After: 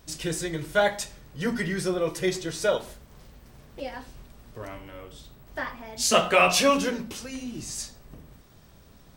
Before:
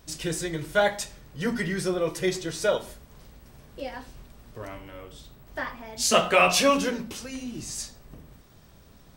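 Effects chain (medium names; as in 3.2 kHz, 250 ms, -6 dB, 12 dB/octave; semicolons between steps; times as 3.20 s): 2.80–3.80 s: loudspeaker Doppler distortion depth 0.31 ms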